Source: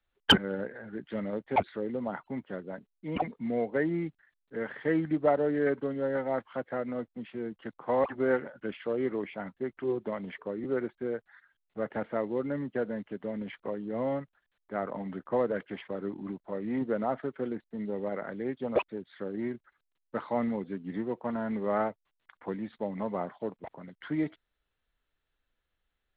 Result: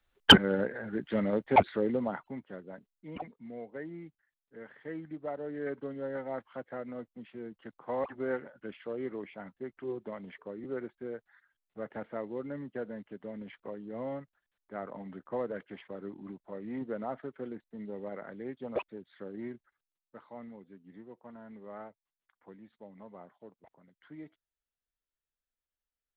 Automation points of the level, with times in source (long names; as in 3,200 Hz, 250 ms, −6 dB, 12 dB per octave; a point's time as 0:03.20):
0:01.90 +4.5 dB
0:02.41 −6 dB
0:02.91 −6 dB
0:03.40 −13 dB
0:05.28 −13 dB
0:05.85 −6.5 dB
0:19.54 −6.5 dB
0:20.15 −16.5 dB